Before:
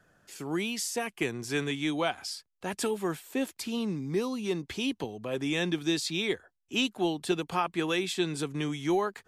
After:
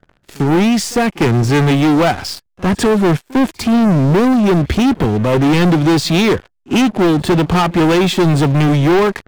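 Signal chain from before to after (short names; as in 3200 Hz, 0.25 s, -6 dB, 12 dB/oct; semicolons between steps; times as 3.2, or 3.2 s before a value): RIAA curve playback; sample leveller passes 5; pre-echo 51 ms -23 dB; gain +3.5 dB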